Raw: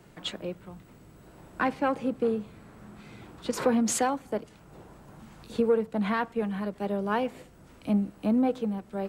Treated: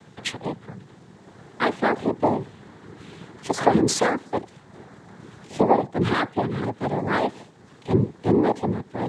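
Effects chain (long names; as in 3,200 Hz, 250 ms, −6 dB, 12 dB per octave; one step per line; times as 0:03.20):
cochlear-implant simulation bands 6
level +5.5 dB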